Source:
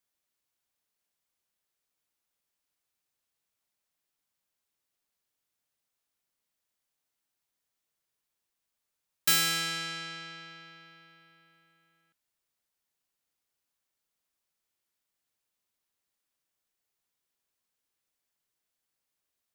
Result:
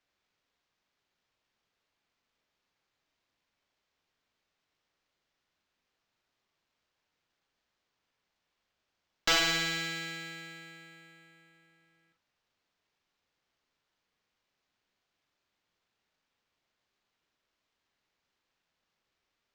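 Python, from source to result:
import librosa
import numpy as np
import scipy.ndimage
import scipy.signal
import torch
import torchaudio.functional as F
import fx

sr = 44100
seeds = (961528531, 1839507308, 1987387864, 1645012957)

p1 = fx.fold_sine(x, sr, drive_db=8, ceiling_db=-11.0)
p2 = x + (p1 * 10.0 ** (-8.0 / 20.0))
p3 = fx.room_early_taps(p2, sr, ms=(42, 52), db=(-8.5, -10.5))
p4 = np.interp(np.arange(len(p3)), np.arange(len(p3))[::4], p3[::4])
y = p4 * 10.0 ** (-6.0 / 20.0)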